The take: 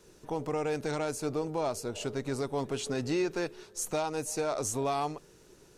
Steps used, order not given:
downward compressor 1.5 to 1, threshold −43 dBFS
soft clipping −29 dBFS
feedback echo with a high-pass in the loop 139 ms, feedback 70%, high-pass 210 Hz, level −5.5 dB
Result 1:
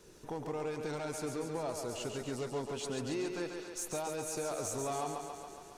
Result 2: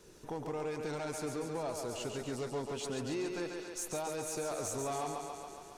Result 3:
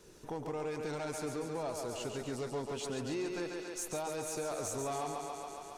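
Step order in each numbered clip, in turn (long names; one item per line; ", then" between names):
downward compressor, then soft clipping, then feedback echo with a high-pass in the loop
downward compressor, then feedback echo with a high-pass in the loop, then soft clipping
feedback echo with a high-pass in the loop, then downward compressor, then soft clipping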